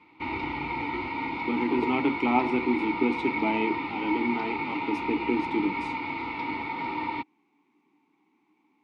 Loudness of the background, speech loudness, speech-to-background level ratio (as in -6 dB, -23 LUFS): -31.5 LUFS, -28.5 LUFS, 3.0 dB